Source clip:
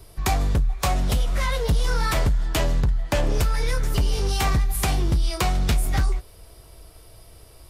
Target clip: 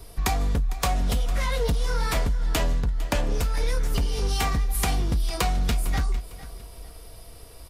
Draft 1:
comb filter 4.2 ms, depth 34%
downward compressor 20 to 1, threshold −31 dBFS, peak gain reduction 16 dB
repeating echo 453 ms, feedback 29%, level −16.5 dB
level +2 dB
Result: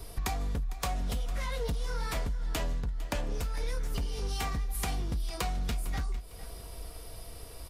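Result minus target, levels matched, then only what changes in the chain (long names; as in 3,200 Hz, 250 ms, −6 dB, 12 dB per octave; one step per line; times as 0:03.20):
downward compressor: peak gain reduction +8.5 dB
change: downward compressor 20 to 1, threshold −22 dBFS, peak gain reduction 7.5 dB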